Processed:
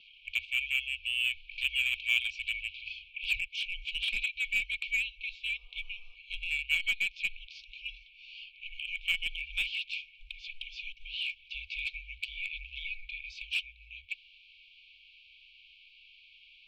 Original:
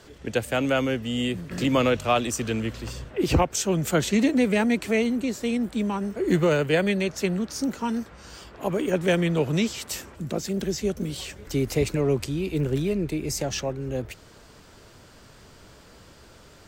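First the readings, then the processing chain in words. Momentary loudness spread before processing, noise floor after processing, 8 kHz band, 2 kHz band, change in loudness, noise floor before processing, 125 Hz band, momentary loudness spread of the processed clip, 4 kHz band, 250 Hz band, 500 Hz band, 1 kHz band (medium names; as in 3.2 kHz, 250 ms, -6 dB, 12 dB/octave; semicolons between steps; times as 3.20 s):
11 LU, -59 dBFS, -19.5 dB, +1.0 dB, -7.5 dB, -51 dBFS, under -30 dB, 14 LU, 0.0 dB, under -40 dB, under -40 dB, under -35 dB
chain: brick-wall FIR band-stop 200–2400 Hz; mistuned SSB -190 Hz 330–3300 Hz; in parallel at -10.5 dB: wavefolder -35 dBFS; on the sum: spectral replace 5.59–6.13 s, 330–1300 Hz before; trim +5 dB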